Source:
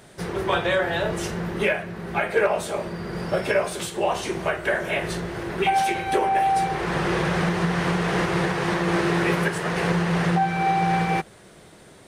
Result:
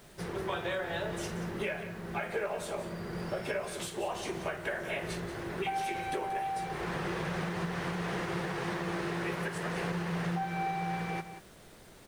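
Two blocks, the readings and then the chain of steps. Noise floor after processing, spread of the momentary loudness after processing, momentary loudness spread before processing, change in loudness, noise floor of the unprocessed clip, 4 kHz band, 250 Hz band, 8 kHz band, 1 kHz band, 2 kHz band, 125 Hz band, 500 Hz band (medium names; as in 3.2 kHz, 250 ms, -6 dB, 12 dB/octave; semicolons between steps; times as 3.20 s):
-54 dBFS, 5 LU, 7 LU, -11.5 dB, -49 dBFS, -10.5 dB, -11.0 dB, -9.5 dB, -12.5 dB, -11.5 dB, -11.0 dB, -11.5 dB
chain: compression 3:1, threshold -24 dBFS, peak gain reduction 7 dB; on a send: delay 182 ms -12 dB; on the sum: added noise pink -51 dBFS; trim -8 dB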